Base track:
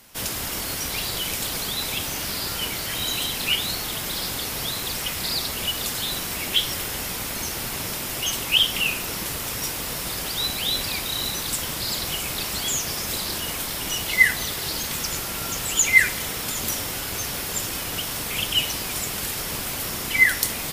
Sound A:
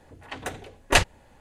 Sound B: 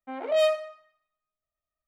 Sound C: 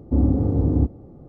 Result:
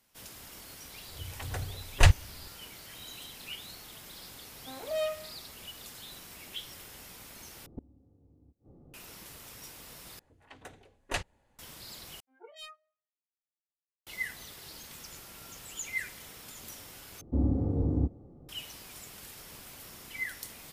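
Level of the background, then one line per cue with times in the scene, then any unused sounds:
base track -19.5 dB
1.08 add A -7 dB + resonant low shelf 160 Hz +13.5 dB, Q 1.5
4.59 add B -9.5 dB
7.66 replace with C -12 dB + flipped gate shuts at -19 dBFS, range -31 dB
10.19 replace with A -15 dB
12.2 replace with B -11.5 dB + spectral noise reduction 28 dB
17.21 replace with C -3 dB + spectral noise reduction 6 dB

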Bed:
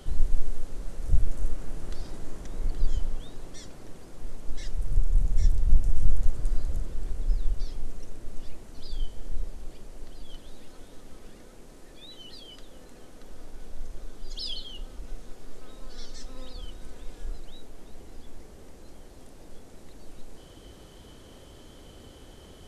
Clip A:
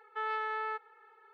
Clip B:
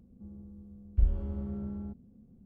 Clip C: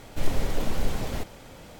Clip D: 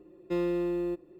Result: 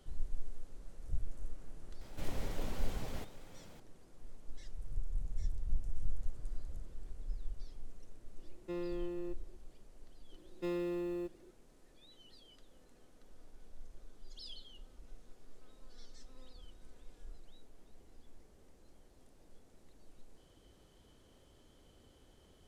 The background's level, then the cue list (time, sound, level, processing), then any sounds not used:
bed -15 dB
2.01 add C -12 dB
8.38 add D -11 dB
10.32 add D -8 dB + high shelf 3300 Hz +6.5 dB
not used: A, B

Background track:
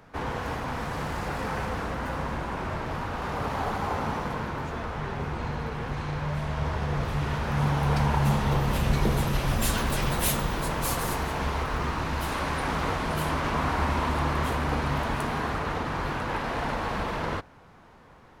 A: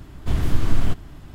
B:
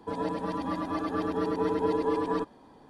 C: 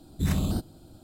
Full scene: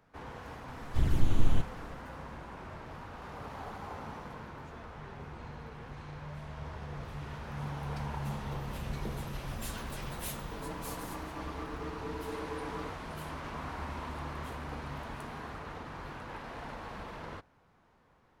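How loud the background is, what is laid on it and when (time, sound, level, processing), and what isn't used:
background track -13.5 dB
0.68 add A -6 dB + envelope flanger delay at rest 9.2 ms, full sweep at -13 dBFS
10.44 add B -13.5 dB
not used: C

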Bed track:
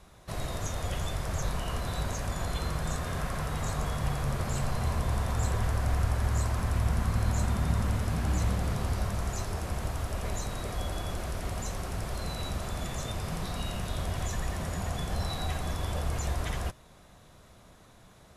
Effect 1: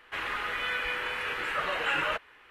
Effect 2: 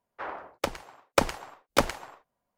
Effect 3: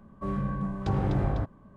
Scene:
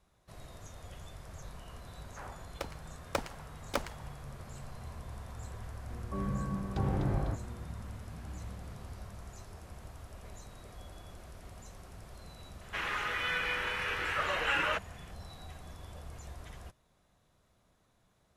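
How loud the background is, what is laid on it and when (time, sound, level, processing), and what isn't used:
bed track -15.5 dB
1.97 add 2 -11 dB
5.9 add 3 -5 dB + buzz 120 Hz, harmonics 4, -45 dBFS
12.61 add 1 -2 dB + bell 5800 Hz +6.5 dB 0.38 oct

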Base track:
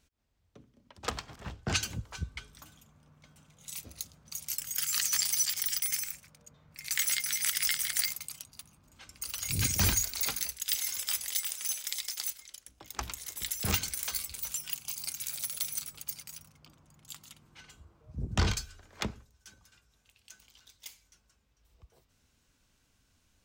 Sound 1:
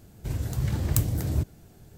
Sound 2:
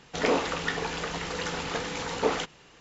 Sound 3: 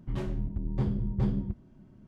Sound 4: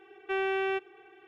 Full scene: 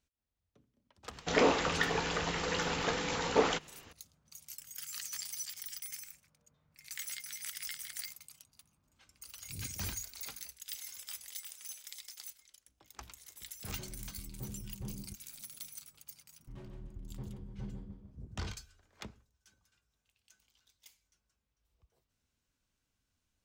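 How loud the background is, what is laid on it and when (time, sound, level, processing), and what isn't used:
base track -12.5 dB
1.13 add 2 -1.5 dB
13.62 add 3 -15.5 dB
16.4 add 3 -16.5 dB + feedback echo 0.15 s, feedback 38%, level -5.5 dB
not used: 1, 4

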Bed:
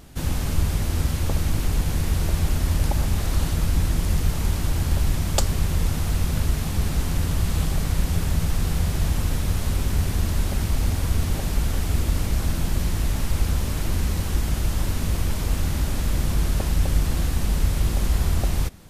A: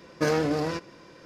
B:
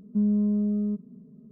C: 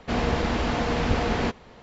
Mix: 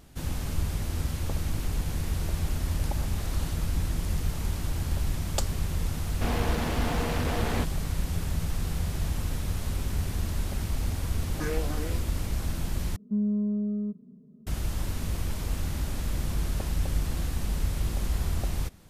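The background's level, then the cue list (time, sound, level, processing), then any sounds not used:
bed -7 dB
6.13 add C -14 dB + sample leveller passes 3
11.19 add A -6.5 dB + endless phaser +2.9 Hz
12.96 replace with B -3.5 dB

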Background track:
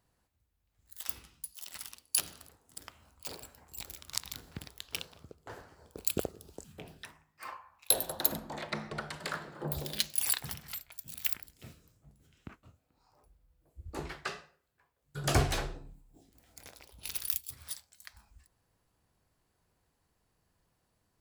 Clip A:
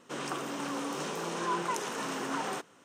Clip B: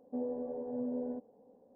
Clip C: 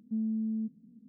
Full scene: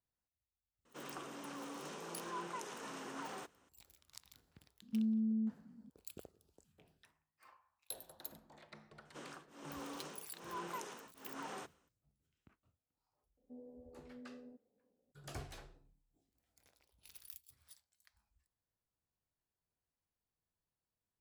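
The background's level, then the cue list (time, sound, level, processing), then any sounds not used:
background track -20 dB
0.85 add A -12 dB
4.82 add C -2.5 dB
9.05 add A -11.5 dB + beating tremolo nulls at 1.2 Hz
13.37 add B -15 dB + bell 1100 Hz -10.5 dB 1.9 oct

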